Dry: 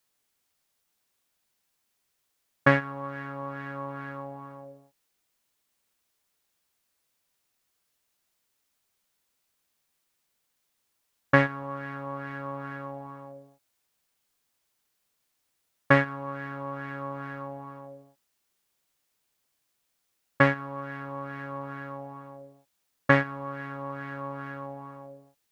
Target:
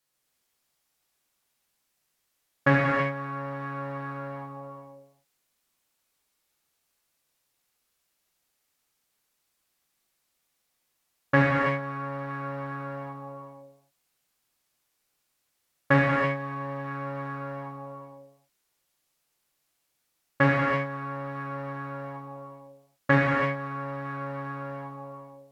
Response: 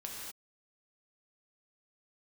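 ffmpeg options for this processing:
-filter_complex "[0:a]asettb=1/sr,asplit=3[link_01][link_02][link_03];[link_01]atrim=end=15.974[link_04];[link_02]atrim=start=15.97:end=16.84,asetpts=PTS-STARTPTS,afade=type=in:duration=0.004:curve=qsin,afade=type=out:start_time=0.866:duration=0.004:curve=qsin,bandreject=frequency=1400:width=6.9[link_05];[link_03]atrim=start=16.836[link_06];[link_04][link_05]acrossfade=duration=0.004:curve1=hsin:curve2=qsin[link_07];[link_07][link_06]acrossfade=duration=0.004:curve1=qsin:curve2=hsin[link_08];[1:a]atrim=start_sample=2205,asetrate=33075,aresample=44100[link_09];[link_08][link_09]afir=irnorm=-1:irlink=0"

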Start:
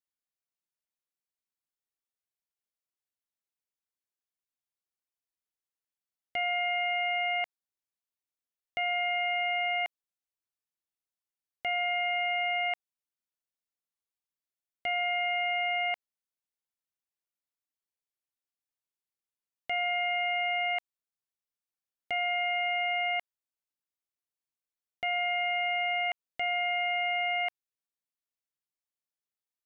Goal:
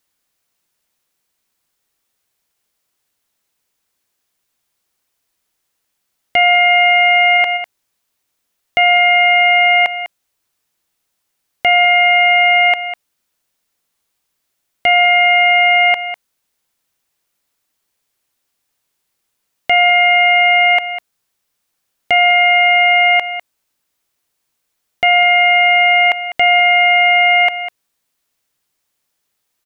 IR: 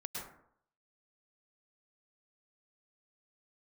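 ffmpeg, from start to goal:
-filter_complex "[0:a]asplit=3[link_01][link_02][link_03];[link_01]afade=type=out:start_time=6.69:duration=0.02[link_04];[link_02]acontrast=49,afade=type=in:start_time=6.69:duration=0.02,afade=type=out:start_time=7.36:duration=0.02[link_05];[link_03]afade=type=in:start_time=7.36:duration=0.02[link_06];[link_04][link_05][link_06]amix=inputs=3:normalize=0,asplit=2[link_07][link_08];[link_08]aecho=0:1:200:0.178[link_09];[link_07][link_09]amix=inputs=2:normalize=0,alimiter=level_in=25.5dB:limit=-1dB:release=50:level=0:latency=1,volume=-3.5dB"

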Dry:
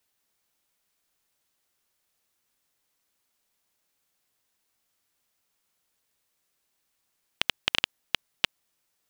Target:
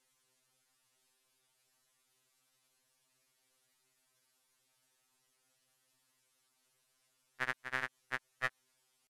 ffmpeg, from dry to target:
ffmpeg -i in.wav -af "alimiter=limit=-12.5dB:level=0:latency=1:release=97,asetrate=25476,aresample=44100,atempo=1.73107,afftfilt=real='re*2.45*eq(mod(b,6),0)':imag='im*2.45*eq(mod(b,6),0)':win_size=2048:overlap=0.75,volume=2.5dB" out.wav

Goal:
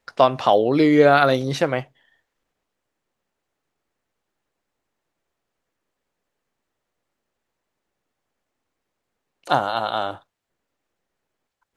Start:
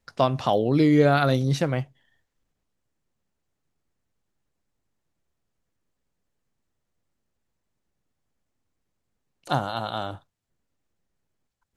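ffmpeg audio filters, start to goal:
ffmpeg -i in.wav -af "bass=frequency=250:gain=-13,treble=frequency=4000:gain=-6,volume=7dB" out.wav

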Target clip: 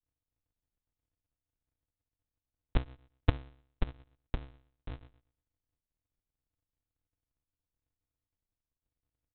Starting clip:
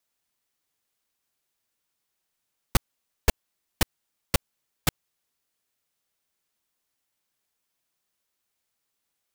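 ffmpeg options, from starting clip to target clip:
ffmpeg -i in.wav -af "bandreject=frequency=62.28:width_type=h:width=4,bandreject=frequency=124.56:width_type=h:width=4,bandreject=frequency=186.84:width_type=h:width=4,bandreject=frequency=249.12:width_type=h:width=4,bandreject=frequency=311.4:width_type=h:width=4,bandreject=frequency=373.68:width_type=h:width=4,aresample=8000,acrusher=samples=41:mix=1:aa=0.000001,aresample=44100,volume=-3dB" out.wav

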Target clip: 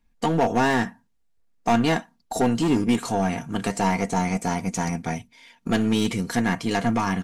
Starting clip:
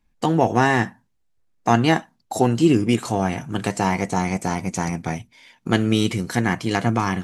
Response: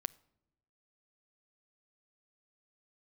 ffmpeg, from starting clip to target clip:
-af "aeval=exprs='0.841*(cos(1*acos(clip(val(0)/0.841,-1,1)))-cos(1*PI/2))+0.335*(cos(2*acos(clip(val(0)/0.841,-1,1)))-cos(2*PI/2))':channel_layout=same,aeval=exprs='clip(val(0),-1,0.168)':channel_layout=same,aecho=1:1:4.3:0.41,volume=-1.5dB"

